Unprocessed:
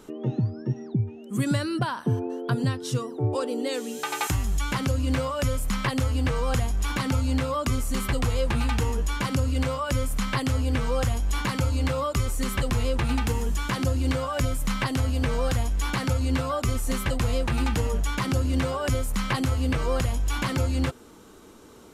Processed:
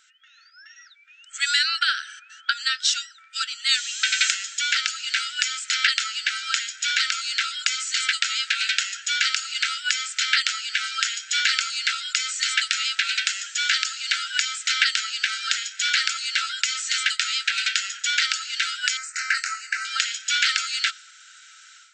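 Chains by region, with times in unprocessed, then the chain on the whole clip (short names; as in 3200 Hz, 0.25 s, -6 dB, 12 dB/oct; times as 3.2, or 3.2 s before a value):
18.97–19.85 fixed phaser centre 1400 Hz, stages 4 + doubler 25 ms -10 dB
whole clip: FFT band-pass 1300–8200 Hz; dynamic EQ 4100 Hz, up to +7 dB, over -50 dBFS, Q 1; AGC gain up to 11.5 dB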